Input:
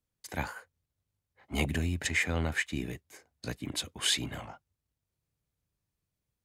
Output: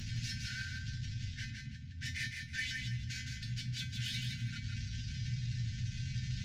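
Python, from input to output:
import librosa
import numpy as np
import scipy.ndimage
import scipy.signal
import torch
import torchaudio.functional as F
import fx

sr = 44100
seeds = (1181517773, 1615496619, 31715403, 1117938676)

y = fx.delta_mod(x, sr, bps=32000, step_db=-25.5)
y = fx.low_shelf_res(y, sr, hz=760.0, db=9.0, q=1.5)
y = fx.over_compress(y, sr, threshold_db=-27.0, ratio=-0.5)
y = 10.0 ** (-22.5 / 20.0) * np.tanh(y / 10.0 ** (-22.5 / 20.0))
y = fx.brickwall_bandstop(y, sr, low_hz=260.0, high_hz=1400.0)
y = fx.comb_fb(y, sr, f0_hz=120.0, decay_s=0.24, harmonics='odd', damping=0.0, mix_pct=90)
y = fx.echo_feedback(y, sr, ms=163, feedback_pct=26, wet_db=-4.5)
y = y * librosa.db_to_amplitude(1.0)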